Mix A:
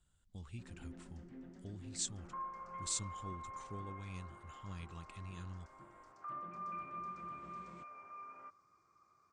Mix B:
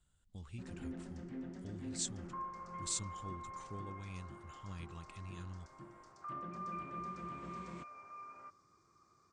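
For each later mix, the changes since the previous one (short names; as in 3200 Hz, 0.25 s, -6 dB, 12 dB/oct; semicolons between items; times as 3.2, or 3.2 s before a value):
first sound +7.5 dB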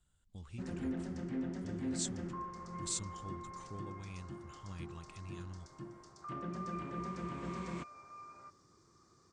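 first sound +7.0 dB; second sound: add air absorption 220 m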